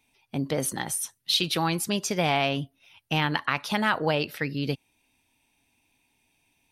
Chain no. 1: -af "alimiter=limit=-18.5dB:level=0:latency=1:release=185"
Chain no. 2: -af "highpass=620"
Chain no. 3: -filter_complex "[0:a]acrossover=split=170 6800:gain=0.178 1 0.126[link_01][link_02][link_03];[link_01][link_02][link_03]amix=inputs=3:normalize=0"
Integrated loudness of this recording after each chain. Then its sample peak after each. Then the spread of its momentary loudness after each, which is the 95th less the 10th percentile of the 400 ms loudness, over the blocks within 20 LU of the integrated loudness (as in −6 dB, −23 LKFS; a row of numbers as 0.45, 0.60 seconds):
−31.0, −28.5, −28.0 LKFS; −18.5, −8.0, −7.0 dBFS; 6, 13, 11 LU